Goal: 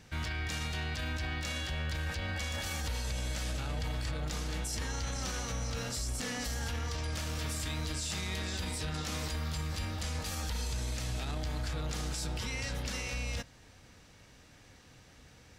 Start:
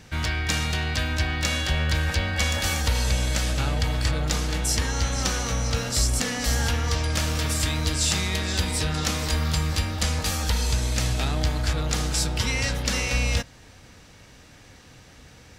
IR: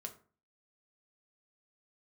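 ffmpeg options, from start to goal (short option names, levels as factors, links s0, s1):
-af "alimiter=limit=0.106:level=0:latency=1:release=23,volume=0.398"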